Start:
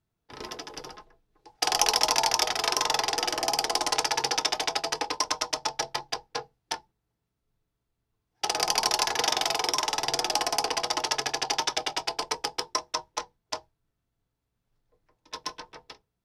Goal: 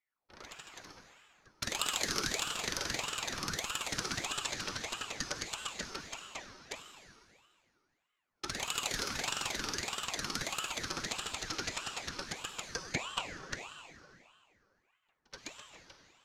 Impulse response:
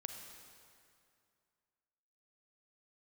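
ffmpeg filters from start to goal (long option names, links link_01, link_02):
-filter_complex "[0:a]asettb=1/sr,asplit=3[link_01][link_02][link_03];[link_01]atrim=end=12.914[link_04];[link_02]atrim=start=12.91:end=13.54,asetpts=PTS-STARTPTS,afade=type=in:duration=0.004:curve=qsin,afade=type=out:start_time=0.626:duration=0.004:curve=qsin,equalizer=frequency=760:width=0.34:gain=9[link_05];[link_03]atrim=start=13.536[link_06];[link_04][link_05]acrossfade=duration=0.004:curve1=hsin:curve2=qsin[link_07];[link_07][link_06]acrossfade=duration=0.004:curve1=qsin:curve2=hsin[link_08];[1:a]atrim=start_sample=2205[link_09];[link_08][link_09]afir=irnorm=-1:irlink=0,aeval=exprs='val(0)*sin(2*PI*1300*n/s+1300*0.65/1.6*sin(2*PI*1.6*n/s))':channel_layout=same,volume=-4.5dB"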